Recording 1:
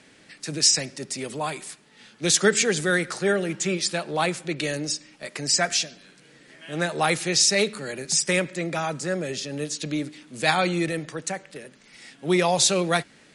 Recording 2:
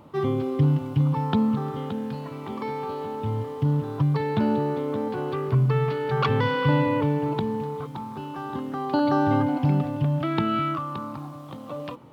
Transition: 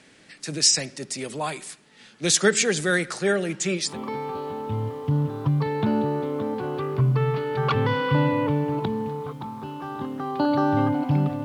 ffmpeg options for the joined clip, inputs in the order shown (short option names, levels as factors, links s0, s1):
-filter_complex "[0:a]apad=whole_dur=11.44,atrim=end=11.44,atrim=end=3.98,asetpts=PTS-STARTPTS[s0];[1:a]atrim=start=2.36:end=9.98,asetpts=PTS-STARTPTS[s1];[s0][s1]acrossfade=d=0.16:c1=tri:c2=tri"